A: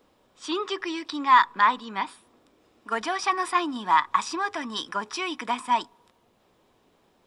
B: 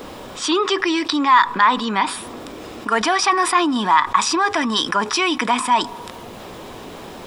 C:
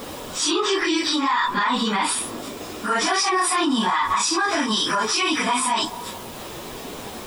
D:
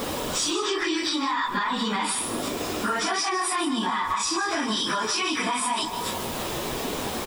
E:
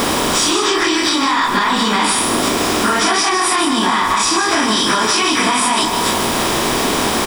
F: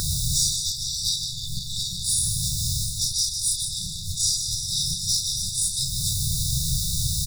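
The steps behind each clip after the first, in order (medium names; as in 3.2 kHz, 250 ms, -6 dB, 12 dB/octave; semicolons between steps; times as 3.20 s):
level flattener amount 50%; trim +3 dB
phase randomisation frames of 100 ms; treble shelf 5.2 kHz +10.5 dB; peak limiter -12.5 dBFS, peak gain reduction 10 dB
compression 6:1, threshold -29 dBFS, peak gain reduction 11.5 dB; delay 153 ms -11 dB; trim +5 dB
spectral levelling over time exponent 0.6; trim +7 dB
one-sided wavefolder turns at -9.5 dBFS; brick-wall FIR band-stop 160–3500 Hz; resonant high shelf 2.1 kHz -8.5 dB, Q 3; trim +5.5 dB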